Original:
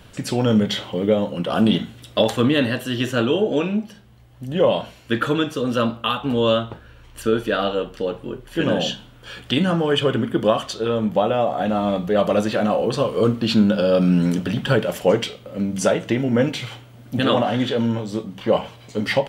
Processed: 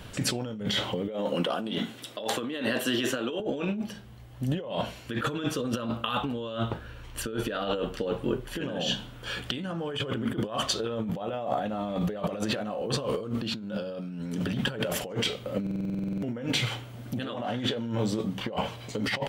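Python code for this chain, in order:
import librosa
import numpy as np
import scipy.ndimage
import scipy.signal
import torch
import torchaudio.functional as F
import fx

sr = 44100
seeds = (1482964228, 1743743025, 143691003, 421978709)

y = fx.highpass(x, sr, hz=250.0, slope=12, at=(1.08, 3.4))
y = fx.over_compress(y, sr, threshold_db=-27.0, ratio=-1.0)
y = fx.buffer_glitch(y, sr, at_s=(15.62,), block=2048, repeats=12)
y = y * librosa.db_to_amplitude(-4.0)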